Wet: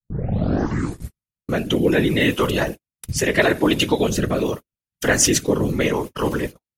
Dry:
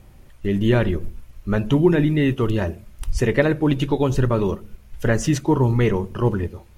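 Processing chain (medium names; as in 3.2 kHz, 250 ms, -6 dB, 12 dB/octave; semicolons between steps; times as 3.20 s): tape start-up on the opening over 1.32 s; rotary cabinet horn 0.75 Hz; whisper effect; in parallel at +1.5 dB: peak limiter -17.5 dBFS, peak gain reduction 11 dB; on the sum: tilt EQ +3 dB/octave; gate -29 dBFS, range -52 dB; trim +2 dB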